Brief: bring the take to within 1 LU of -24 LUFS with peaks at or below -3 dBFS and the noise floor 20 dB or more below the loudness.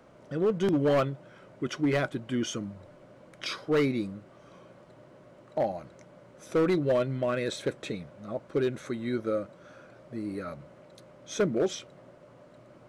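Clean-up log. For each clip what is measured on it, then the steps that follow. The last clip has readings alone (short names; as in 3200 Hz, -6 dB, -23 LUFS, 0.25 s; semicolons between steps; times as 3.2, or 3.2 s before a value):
clipped 1.3%; flat tops at -20.0 dBFS; loudness -30.0 LUFS; peak -20.0 dBFS; loudness target -24.0 LUFS
-> clip repair -20 dBFS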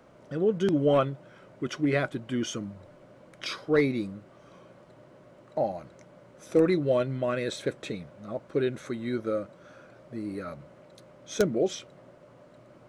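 clipped 0.0%; loudness -29.0 LUFS; peak -11.0 dBFS; loudness target -24.0 LUFS
-> gain +5 dB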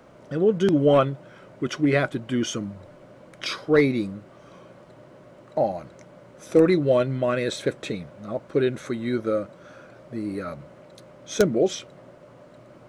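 loudness -24.0 LUFS; peak -6.0 dBFS; noise floor -50 dBFS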